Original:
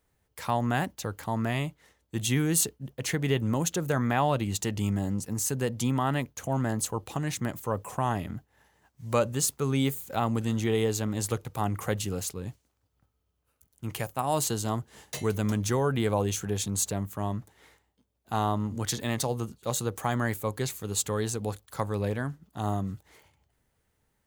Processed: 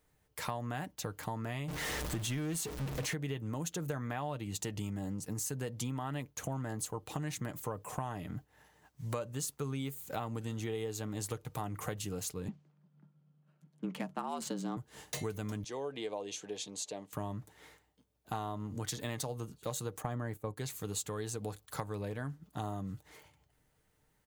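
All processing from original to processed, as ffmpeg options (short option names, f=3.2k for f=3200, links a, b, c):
-filter_complex "[0:a]asettb=1/sr,asplit=3[a][b][c];[a]atrim=end=1.684[d];[b]atrim=start=1.68:end=3.14,asetpts=PTS-STARTPTS,afade=t=in:d=0.004:c=qsin,afade=t=out:st=1.456:d=0.004:c=qsin,aeval=exprs='val(0)+0.5*0.0398*sgn(val(0))':c=same,highshelf=f=8.3k:g=-5[e];[c]atrim=start=3.136[f];[d][e]acrossfade=d=0.004:c1=hsin:c2=qsin[g];[g][f]acrossfade=d=0.004:c1=qsin:c2=hsin,asettb=1/sr,asplit=3[h][i][j];[h]atrim=end=12.484[k];[i]atrim=start=12.48:end=14.77,asetpts=PTS-STARTPTS,afade=t=in:d=0.004:c=qsin,afade=t=out:st=2.286:d=0.004:c=qsin,lowshelf=f=110:g=11,afreqshift=88,adynamicsmooth=sensitivity=5.5:basefreq=3.3k[l];[j]atrim=start=14.766[m];[k][l]acrossfade=d=0.004:c1=hsin:c2=qsin[n];[n][m]acrossfade=d=0.004:c1=qsin:c2=hsin,asettb=1/sr,asplit=3[o][p][q];[o]atrim=end=15.644[r];[p]atrim=start=15.64:end=17.13,asetpts=PTS-STARTPTS,afade=t=in:d=0.004:c=qsin,afade=t=out:st=1.486:d=0.004:c=qsin,highpass=510,lowpass=4.3k,equalizer=f=1.4k:t=o:w=1.5:g=-13.5,bandreject=f=1.4k:w=13[s];[q]atrim=start=17.126[t];[r][s]acrossfade=d=0.004:c1=hsin:c2=qsin[u];[u][t]acrossfade=d=0.004:c1=qsin:c2=hsin,asettb=1/sr,asplit=3[v][w][x];[v]atrim=end=20.024[y];[w]atrim=start=20.02:end=20.57,asetpts=PTS-STARTPTS,afade=t=in:d=0.004:c=qsin,afade=t=out:st=0.546:d=0.004:c=qsin,agate=range=-10dB:threshold=-38dB:ratio=16:release=100:detection=peak,tiltshelf=f=1.2k:g=5.5[z];[x]atrim=start=20.566[aa];[y][z]acrossfade=d=0.004:c1=hsin:c2=qsin[ab];[ab][aa]acrossfade=d=0.004:c1=qsin:c2=hsin,aecho=1:1:6.6:0.31,acompressor=threshold=-35dB:ratio=6"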